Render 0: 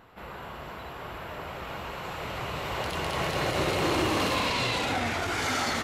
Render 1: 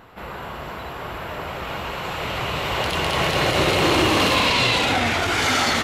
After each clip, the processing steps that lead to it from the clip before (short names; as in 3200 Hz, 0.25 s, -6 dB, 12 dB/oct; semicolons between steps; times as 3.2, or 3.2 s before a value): dynamic EQ 3100 Hz, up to +4 dB, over -45 dBFS, Q 1.4; gain +7.5 dB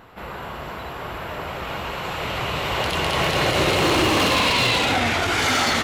wavefolder -12 dBFS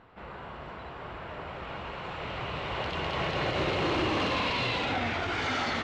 air absorption 160 m; gain -8.5 dB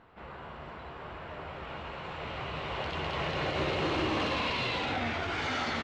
doubler 13 ms -11 dB; gain -2.5 dB